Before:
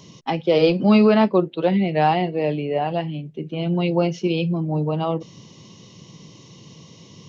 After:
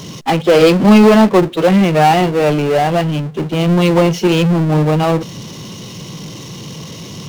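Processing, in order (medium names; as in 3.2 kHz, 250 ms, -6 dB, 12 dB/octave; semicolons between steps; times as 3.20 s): power-law waveshaper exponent 0.5; upward expansion 1.5:1, over -27 dBFS; trim +5 dB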